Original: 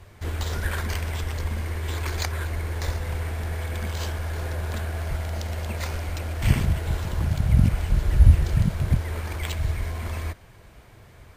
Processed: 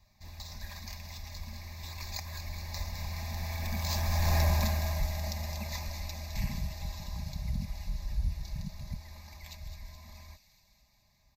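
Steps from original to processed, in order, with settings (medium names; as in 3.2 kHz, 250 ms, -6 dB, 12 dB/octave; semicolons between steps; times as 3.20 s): Doppler pass-by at 4.40 s, 9 m/s, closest 1.5 m; resonant high shelf 2.8 kHz +7 dB, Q 1.5; comb 4.9 ms, depth 52%; dynamic bell 4.5 kHz, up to -6 dB, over -56 dBFS, Q 1.1; in parallel at -2 dB: compression, threshold -44 dBFS, peak gain reduction 15 dB; on the sum: saturation -25 dBFS, distortion -19 dB; static phaser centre 2.1 kHz, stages 8; on a send: feedback echo behind a high-pass 211 ms, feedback 65%, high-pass 2.9 kHz, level -8 dB; on the sum: trim +8 dB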